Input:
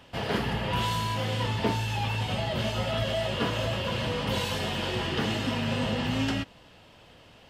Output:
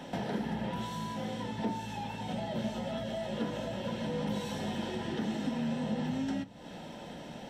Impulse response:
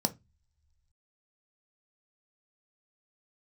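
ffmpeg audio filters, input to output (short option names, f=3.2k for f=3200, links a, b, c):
-filter_complex "[0:a]acompressor=threshold=-43dB:ratio=8,asplit=2[a][b];[1:a]atrim=start_sample=2205,highshelf=f=7.5k:g=-4.5[c];[b][c]afir=irnorm=-1:irlink=0,volume=-3.5dB[d];[a][d]amix=inputs=2:normalize=0,volume=1.5dB"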